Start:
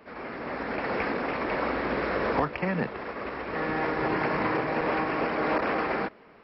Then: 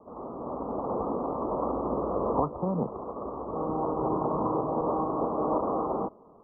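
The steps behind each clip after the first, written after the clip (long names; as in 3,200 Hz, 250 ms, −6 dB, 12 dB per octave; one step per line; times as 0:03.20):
Butterworth low-pass 1,200 Hz 96 dB per octave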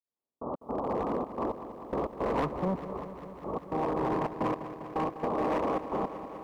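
gate pattern "...x.xxxx.x" 109 BPM −60 dB
gain into a clipping stage and back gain 25 dB
feedback echo at a low word length 199 ms, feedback 80%, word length 11 bits, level −13 dB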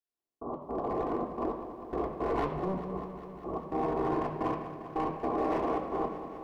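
convolution reverb RT60 0.75 s, pre-delay 3 ms, DRR 0 dB
level −5 dB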